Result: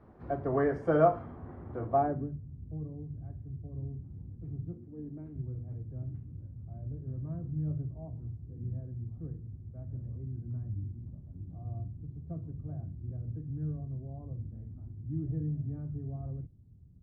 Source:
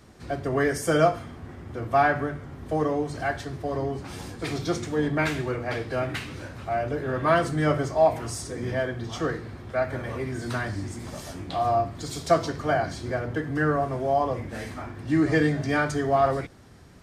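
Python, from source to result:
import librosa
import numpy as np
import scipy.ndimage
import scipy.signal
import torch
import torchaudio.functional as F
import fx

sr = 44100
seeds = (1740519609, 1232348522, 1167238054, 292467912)

y = fx.filter_sweep_lowpass(x, sr, from_hz=1000.0, to_hz=130.0, start_s=1.84, end_s=2.41, q=1.1)
y = fx.low_shelf_res(y, sr, hz=200.0, db=-8.5, q=1.5, at=(4.73, 5.36))
y = F.gain(torch.from_numpy(y), -4.5).numpy()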